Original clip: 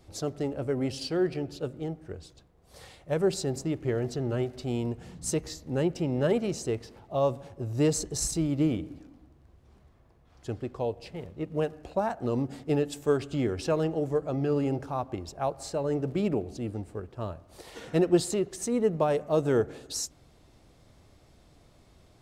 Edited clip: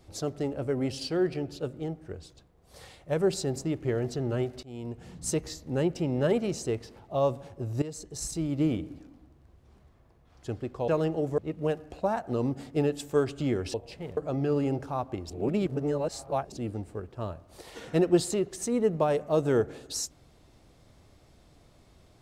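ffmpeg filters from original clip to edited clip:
ffmpeg -i in.wav -filter_complex "[0:a]asplit=9[link_01][link_02][link_03][link_04][link_05][link_06][link_07][link_08][link_09];[link_01]atrim=end=4.63,asetpts=PTS-STARTPTS,afade=type=out:start_time=4.626:duration=0.004:curve=hsin:silence=0.0891251[link_10];[link_02]atrim=start=4.63:end=7.82,asetpts=PTS-STARTPTS,afade=type=in:duration=0.52:silence=0.0891251,afade=type=out:start_time=3.186:duration=0.004:curve=hsin:silence=0.133352[link_11];[link_03]atrim=start=7.82:end=10.882,asetpts=PTS-STARTPTS,afade=type=in:duration=0.9:silence=0.133352[link_12];[link_04]atrim=start=13.668:end=14.172[link_13];[link_05]atrim=start=11.308:end=13.672[link_14];[link_06]atrim=start=10.878:end=11.312[link_15];[link_07]atrim=start=14.168:end=15.302[link_16];[link_08]atrim=start=15.298:end=16.522,asetpts=PTS-STARTPTS,areverse[link_17];[link_09]atrim=start=16.518[link_18];[link_10][link_11][link_12]concat=n=3:v=0:a=1[link_19];[link_19][link_13]acrossfade=duration=0.004:curve1=hsin:curve2=hsin[link_20];[link_20][link_14]acrossfade=duration=0.004:curve1=hsin:curve2=hsin[link_21];[link_21][link_15]acrossfade=duration=0.004:curve1=hsin:curve2=hsin[link_22];[link_22][link_16]acrossfade=duration=0.004:curve1=hsin:curve2=hsin[link_23];[link_23][link_17]acrossfade=duration=0.004:curve1=hsin:curve2=hsin[link_24];[link_24][link_18]acrossfade=duration=0.004:curve1=hsin:curve2=hsin" out.wav

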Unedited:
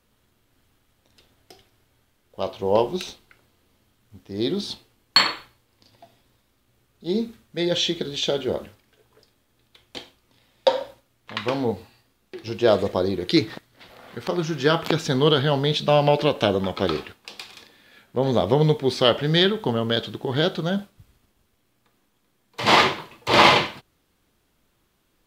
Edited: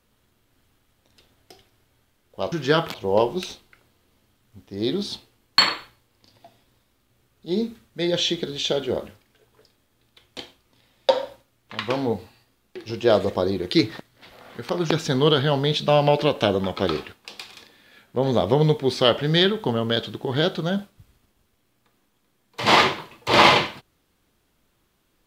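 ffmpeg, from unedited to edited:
ffmpeg -i in.wav -filter_complex "[0:a]asplit=4[link_01][link_02][link_03][link_04];[link_01]atrim=end=2.522[link_05];[link_02]atrim=start=14.478:end=14.902[link_06];[link_03]atrim=start=2.518:end=14.482[link_07];[link_04]atrim=start=14.898[link_08];[link_05][link_06]acrossfade=duration=0.004:curve1=hsin:curve2=hsin[link_09];[link_09][link_07]acrossfade=duration=0.004:curve1=hsin:curve2=hsin[link_10];[link_10][link_08]acrossfade=duration=0.004:curve1=hsin:curve2=hsin" out.wav

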